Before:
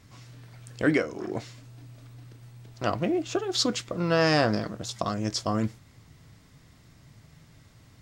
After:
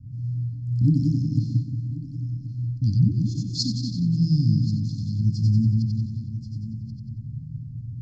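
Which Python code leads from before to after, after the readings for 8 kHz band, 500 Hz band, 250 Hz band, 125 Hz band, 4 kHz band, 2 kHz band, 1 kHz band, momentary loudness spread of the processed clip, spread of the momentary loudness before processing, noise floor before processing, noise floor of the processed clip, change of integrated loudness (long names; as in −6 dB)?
−5.0 dB, below −20 dB, +4.5 dB, +15.0 dB, −3.0 dB, below −40 dB, below −40 dB, 15 LU, 13 LU, −56 dBFS, −37 dBFS, +3.0 dB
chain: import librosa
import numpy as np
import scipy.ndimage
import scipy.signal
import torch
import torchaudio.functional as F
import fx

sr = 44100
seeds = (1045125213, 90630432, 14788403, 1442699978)

y = fx.reverse_delay(x, sr, ms=233, wet_db=-8.5)
y = fx.peak_eq(y, sr, hz=120.0, db=12.5, octaves=0.85)
y = fx.echo_split(y, sr, split_hz=500.0, low_ms=180, high_ms=92, feedback_pct=52, wet_db=-3.5)
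y = fx.env_lowpass(y, sr, base_hz=760.0, full_db=-16.0)
y = scipy.signal.sosfilt(scipy.signal.cheby1(5, 1.0, [280.0, 4500.0], 'bandstop', fs=sr, output='sos'), y)
y = fx.quant_float(y, sr, bits=8)
y = fx.env_lowpass_down(y, sr, base_hz=2000.0, full_db=-20.0)
y = scipy.signal.sosfilt(scipy.signal.butter(2, 7600.0, 'lowpass', fs=sr, output='sos'), y)
y = fx.high_shelf(y, sr, hz=3800.0, db=10.0)
y = y + 0.56 * np.pad(y, (int(1.2 * sr / 1000.0), 0))[:len(y)]
y = y + 10.0 ** (-17.0 / 20.0) * np.pad(y, (int(1082 * sr / 1000.0), 0))[:len(y)]
y = fx.rider(y, sr, range_db=5, speed_s=2.0)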